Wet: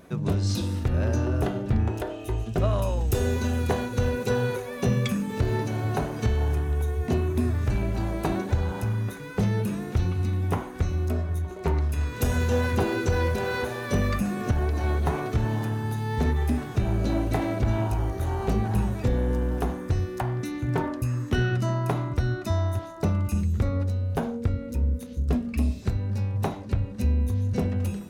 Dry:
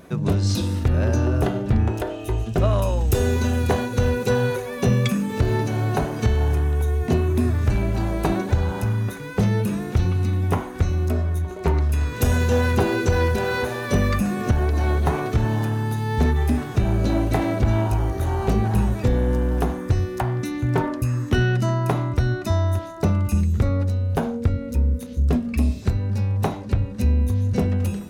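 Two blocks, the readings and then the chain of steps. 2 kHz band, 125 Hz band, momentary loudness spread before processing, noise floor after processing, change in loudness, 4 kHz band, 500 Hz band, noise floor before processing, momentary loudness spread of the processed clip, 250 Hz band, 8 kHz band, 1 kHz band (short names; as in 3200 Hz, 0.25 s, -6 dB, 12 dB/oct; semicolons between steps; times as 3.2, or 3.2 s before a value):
-4.5 dB, -4.5 dB, 4 LU, -37 dBFS, -4.5 dB, -4.5 dB, -4.5 dB, -33 dBFS, 4 LU, -4.5 dB, -4.5 dB, -4.5 dB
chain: flange 1.4 Hz, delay 2.9 ms, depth 6.5 ms, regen -88%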